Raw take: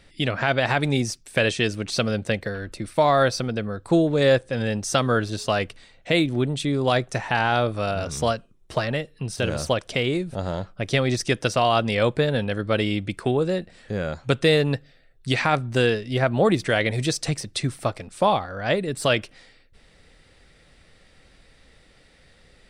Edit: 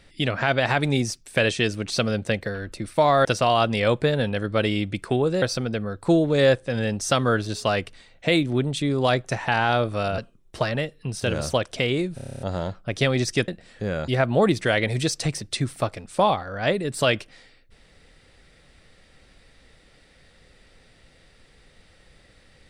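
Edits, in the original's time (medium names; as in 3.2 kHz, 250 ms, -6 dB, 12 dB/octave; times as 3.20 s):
8.01–8.34 s: delete
10.32 s: stutter 0.03 s, 9 plays
11.40–13.57 s: move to 3.25 s
14.17–16.11 s: delete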